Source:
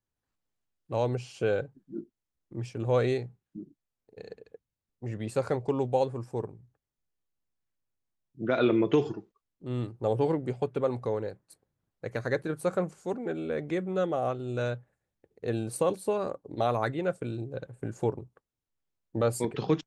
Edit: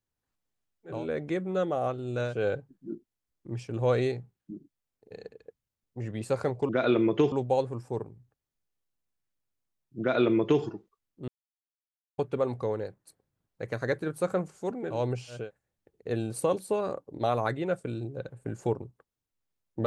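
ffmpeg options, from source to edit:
-filter_complex "[0:a]asplit=9[a][b][c][d][e][f][g][h][i];[a]atrim=end=1.07[j];[b]atrim=start=13.24:end=14.88[k];[c]atrim=start=1.29:end=5.752[l];[d]atrim=start=8.428:end=9.062[m];[e]atrim=start=5.748:end=9.71,asetpts=PTS-STARTPTS,afade=t=out:st=3.958:d=0.004:c=hsin[n];[f]atrim=start=9.71:end=10.61,asetpts=PTS-STARTPTS,volume=0[o];[g]atrim=start=10.61:end=13.48,asetpts=PTS-STARTPTS,afade=t=in:d=0.004:c=hsin[p];[h]atrim=start=0.83:end=1.53[q];[i]atrim=start=14.64[r];[j][k]acrossfade=d=0.24:c1=tri:c2=tri[s];[s][l]acrossfade=d=0.24:c1=tri:c2=tri[t];[t][m]acrossfade=d=0.004:c1=hsin:c2=hsin[u];[n][o][p]concat=n=3:v=0:a=1[v];[u][v]acrossfade=d=0.004:c1=hsin:c2=hsin[w];[w][q]acrossfade=d=0.24:c1=tri:c2=tri[x];[x][r]acrossfade=d=0.24:c1=tri:c2=tri"

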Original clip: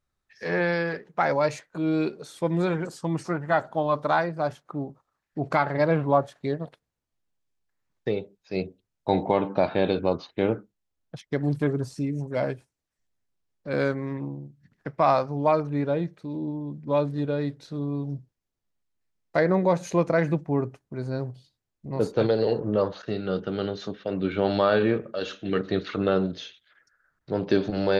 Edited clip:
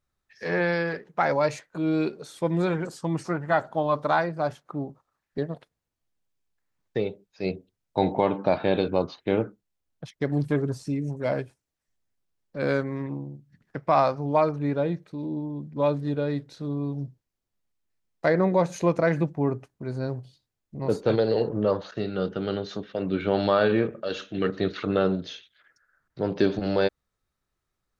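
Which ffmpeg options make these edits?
-filter_complex "[0:a]asplit=2[a][b];[a]atrim=end=5.382[c];[b]atrim=start=6.488[d];[c][d]acrossfade=d=0.004:c1=hsin:c2=hsin"

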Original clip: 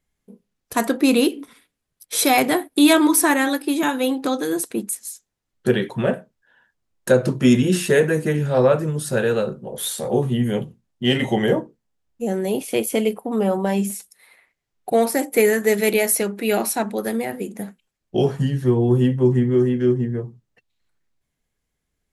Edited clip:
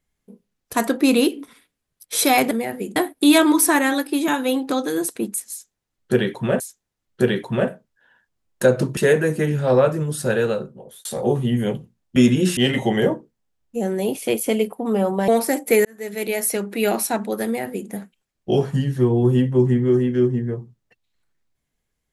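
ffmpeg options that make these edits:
-filter_complex "[0:a]asplit=10[a][b][c][d][e][f][g][h][i][j];[a]atrim=end=2.512[k];[b]atrim=start=17.108:end=17.562[l];[c]atrim=start=2.508:end=6.152[m];[d]atrim=start=5.058:end=7.432[n];[e]atrim=start=7.838:end=9.92,asetpts=PTS-STARTPTS,afade=t=out:st=1.462:d=0.62[o];[f]atrim=start=9.92:end=11.032,asetpts=PTS-STARTPTS,afade=t=in:d=0.004:c=hsin[p];[g]atrim=start=7.428:end=7.842[q];[h]atrim=start=11.028:end=13.742[r];[i]atrim=start=14.938:end=15.51,asetpts=PTS-STARTPTS,afade=t=out:st=0.568:d=0.004:c=hsin[s];[j]atrim=start=15.51,asetpts=PTS-STARTPTS,afade=t=in:d=0.86[t];[k][l]acrossfade=d=0.004:c1=hsin:c2=hsin[u];[u][m]acrossfade=d=0.004:c1=hsin:c2=hsin[v];[v][n]acrossfade=d=0.004:c1=hsin:c2=hsin[w];[o][p]concat=n=2:v=0:a=1[x];[w][x]acrossfade=d=0.004:c1=hsin:c2=hsin[y];[y][q]acrossfade=d=0.004:c1=hsin:c2=hsin[z];[z][r]acrossfade=d=0.004:c1=hsin:c2=hsin[aa];[s][t]concat=n=2:v=0:a=1[ab];[aa][ab]acrossfade=d=0.004:c1=hsin:c2=hsin"

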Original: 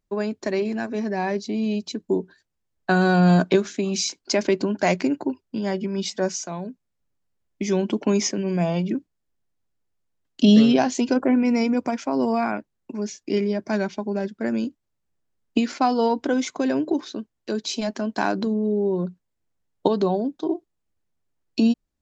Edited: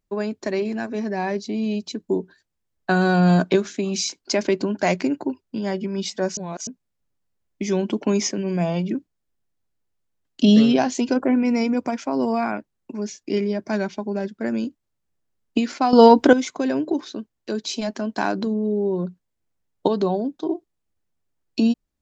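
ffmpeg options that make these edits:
-filter_complex "[0:a]asplit=5[a][b][c][d][e];[a]atrim=end=6.372[f];[b]atrim=start=6.368:end=6.672,asetpts=PTS-STARTPTS,areverse[g];[c]atrim=start=6.668:end=15.932[h];[d]atrim=start=15.928:end=16.332,asetpts=PTS-STARTPTS,volume=10.5dB[i];[e]atrim=start=16.328[j];[f][g]acrossfade=d=0.004:c1=hsin:c2=hsin[k];[k][h]acrossfade=d=0.004:c1=hsin:c2=hsin[l];[l][i]acrossfade=d=0.004:c1=hsin:c2=hsin[m];[m][j]acrossfade=d=0.004:c1=hsin:c2=hsin"

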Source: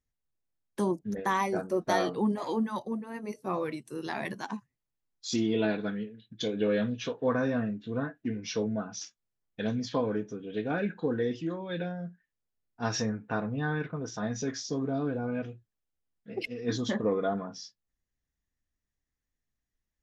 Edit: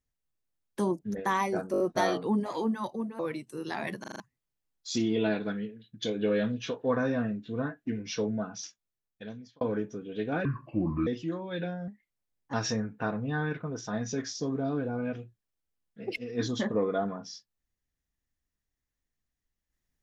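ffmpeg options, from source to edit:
-filter_complex "[0:a]asplit=16[a][b][c][d][e][f][g][h][i][j][k][l][m][n][o][p];[a]atrim=end=1.742[q];[b]atrim=start=1.718:end=1.742[r];[c]atrim=start=1.718:end=1.742[s];[d]atrim=start=1.718:end=1.742[t];[e]atrim=start=1.718:end=3.112[u];[f]atrim=start=3.568:end=4.422[v];[g]atrim=start=4.378:end=4.422[w];[h]atrim=start=4.378:end=4.422[x];[i]atrim=start=4.378:end=4.422[y];[j]atrim=start=4.378:end=4.422[z];[k]atrim=start=4.578:end=9.99,asetpts=PTS-STARTPTS,afade=t=out:st=4.342:d=1.07[aa];[l]atrim=start=9.99:end=10.834,asetpts=PTS-STARTPTS,afade=t=in:d=0.004:c=hsin[ab];[m]atrim=start=10.83:end=11.25,asetpts=PTS-STARTPTS,asetrate=29988,aresample=44100,atrim=end_sample=27238,asetpts=PTS-STARTPTS[ac];[n]atrim=start=11.246:end=12.064[ad];[o]atrim=start=12.06:end=12.83,asetpts=PTS-STARTPTS,asetrate=51597,aresample=44100,atrim=end_sample=29023,asetpts=PTS-STARTPTS[ae];[p]atrim=start=12.826[af];[q][r]acrossfade=d=0.004:c1=hsin:c2=hsin[ag];[ag][s]acrossfade=d=0.004:c1=hsin:c2=hsin[ah];[ah][t]acrossfade=d=0.004:c1=hsin:c2=hsin[ai];[ai][u]acrossfade=d=0.004:c1=hsin:c2=hsin[aj];[aj][v]acrossfade=d=0.004:c1=hsin:c2=hsin[ak];[ak][w]acrossfade=d=0.004:c1=hsin:c2=hsin[al];[al][x]acrossfade=d=0.004:c1=hsin:c2=hsin[am];[am][y]acrossfade=d=0.004:c1=hsin:c2=hsin[an];[an][z]acrossfade=d=0.004:c1=hsin:c2=hsin[ao];[aa][ab]concat=n=2:v=0:a=1[ap];[ao][ap]acrossfade=d=0.004:c1=hsin:c2=hsin[aq];[aq][ac]acrossfade=d=0.004:c1=hsin:c2=hsin[ar];[ar][ad]acrossfade=d=0.004:c1=hsin:c2=hsin[as];[as][ae]acrossfade=d=0.004:c1=hsin:c2=hsin[at];[at][af]acrossfade=d=0.004:c1=hsin:c2=hsin"

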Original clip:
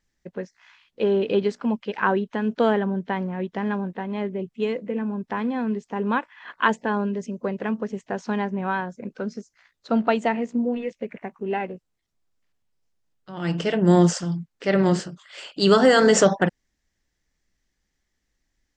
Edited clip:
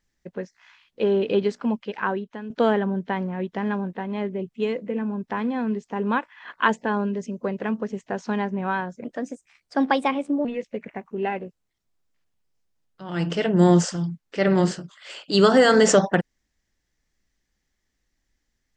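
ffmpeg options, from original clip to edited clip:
-filter_complex "[0:a]asplit=4[a][b][c][d];[a]atrim=end=2.5,asetpts=PTS-STARTPTS,afade=t=out:st=1.66:d=0.84:silence=0.251189[e];[b]atrim=start=2.5:end=9.044,asetpts=PTS-STARTPTS,afade=t=in:d=0.004:c=hsin:silence=0.251189[f];[c]atrim=start=9.04:end=10.73,asetpts=PTS-STARTPTS,asetrate=52920,aresample=44100[g];[d]atrim=start=10.726[h];[e][f]concat=n=2:v=0:a=1[i];[i][g]acrossfade=d=0.004:c1=hsin:c2=hsin[j];[j][h]acrossfade=d=0.004:c1=hsin:c2=hsin"

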